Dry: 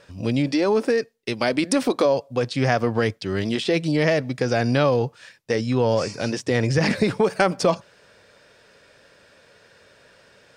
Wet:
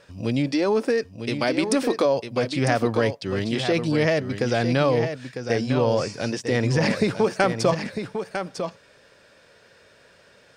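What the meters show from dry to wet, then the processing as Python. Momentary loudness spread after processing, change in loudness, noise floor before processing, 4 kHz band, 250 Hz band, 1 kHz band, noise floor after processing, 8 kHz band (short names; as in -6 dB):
9 LU, -1.5 dB, -55 dBFS, -1.0 dB, -1.0 dB, -1.0 dB, -55 dBFS, -1.0 dB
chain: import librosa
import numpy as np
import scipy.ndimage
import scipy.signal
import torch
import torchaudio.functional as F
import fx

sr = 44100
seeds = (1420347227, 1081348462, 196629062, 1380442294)

y = x + 10.0 ** (-8.0 / 20.0) * np.pad(x, (int(951 * sr / 1000.0), 0))[:len(x)]
y = F.gain(torch.from_numpy(y), -1.5).numpy()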